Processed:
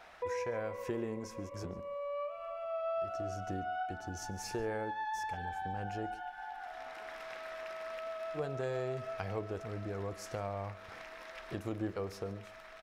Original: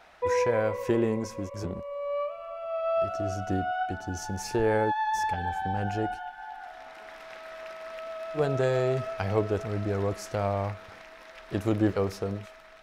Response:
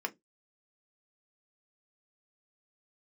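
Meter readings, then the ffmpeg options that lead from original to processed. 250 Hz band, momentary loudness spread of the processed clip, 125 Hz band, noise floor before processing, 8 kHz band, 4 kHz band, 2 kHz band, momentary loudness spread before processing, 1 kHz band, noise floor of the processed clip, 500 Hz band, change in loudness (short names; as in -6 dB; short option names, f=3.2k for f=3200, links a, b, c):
-11.5 dB, 8 LU, -11.0 dB, -49 dBFS, -7.0 dB, -7.5 dB, -8.0 dB, 17 LU, -8.5 dB, -51 dBFS, -10.0 dB, -10.5 dB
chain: -filter_complex "[0:a]acompressor=threshold=-41dB:ratio=2,aecho=1:1:142:0.0891,asplit=2[a][b];[1:a]atrim=start_sample=2205[c];[b][c]afir=irnorm=-1:irlink=0,volume=-14.5dB[d];[a][d]amix=inputs=2:normalize=0,volume=-2dB"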